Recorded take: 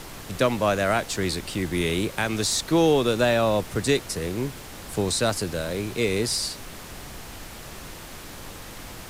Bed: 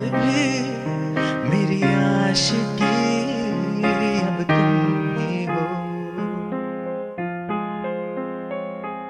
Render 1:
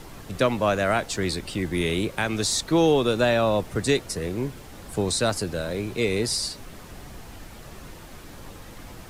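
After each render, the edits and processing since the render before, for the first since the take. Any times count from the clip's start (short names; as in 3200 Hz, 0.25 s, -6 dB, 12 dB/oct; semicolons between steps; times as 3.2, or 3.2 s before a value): denoiser 7 dB, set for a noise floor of -40 dBFS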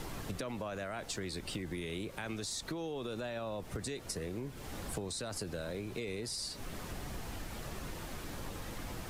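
limiter -19.5 dBFS, peak gain reduction 11 dB; compressor 12:1, threshold -36 dBFS, peak gain reduction 13 dB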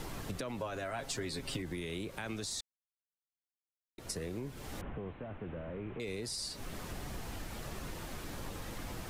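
0.6–1.62 comb 7.4 ms, depth 62%; 2.61–3.98 mute; 4.81–6 delta modulation 16 kbps, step -54 dBFS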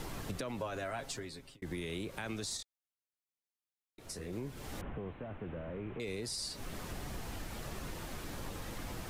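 0.9–1.62 fade out; 2.57–4.33 detuned doubles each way 37 cents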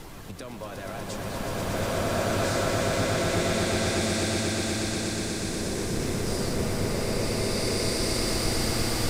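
swelling echo 0.121 s, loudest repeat 5, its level -7 dB; bloom reverb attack 1.71 s, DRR -11 dB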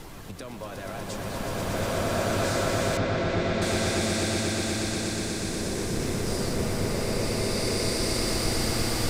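2.97–3.62 air absorption 170 m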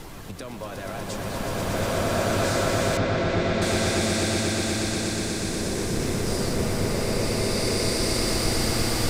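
gain +2.5 dB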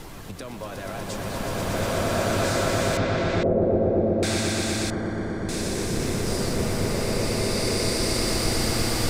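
3.43–4.23 synth low-pass 520 Hz, resonance Q 2.4; 4.9–5.49 polynomial smoothing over 41 samples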